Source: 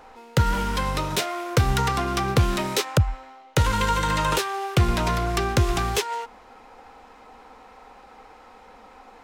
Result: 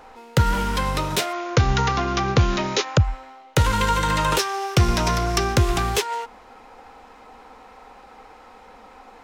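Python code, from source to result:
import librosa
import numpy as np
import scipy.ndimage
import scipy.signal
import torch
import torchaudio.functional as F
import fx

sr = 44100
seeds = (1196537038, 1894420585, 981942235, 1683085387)

y = fx.brickwall_lowpass(x, sr, high_hz=7200.0, at=(1.32, 3.03), fade=0.02)
y = fx.peak_eq(y, sr, hz=5600.0, db=9.5, octaves=0.37, at=(4.39, 5.57))
y = F.gain(torch.from_numpy(y), 2.0).numpy()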